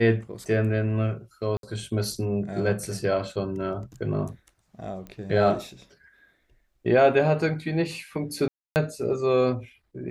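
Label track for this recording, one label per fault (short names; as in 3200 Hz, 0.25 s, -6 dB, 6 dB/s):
1.570000	1.630000	gap 62 ms
5.070000	5.070000	pop -26 dBFS
8.480000	8.760000	gap 0.279 s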